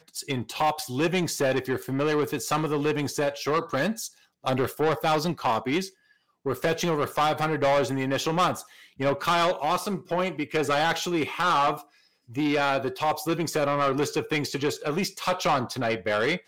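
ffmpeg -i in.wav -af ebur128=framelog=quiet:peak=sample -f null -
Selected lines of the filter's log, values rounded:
Integrated loudness:
  I:         -26.1 LUFS
  Threshold: -36.4 LUFS
Loudness range:
  LRA:         1.9 LU
  Threshold: -46.3 LUFS
  LRA low:   -27.2 LUFS
  LRA high:  -25.4 LUFS
Sample peak:
  Peak:      -15.7 dBFS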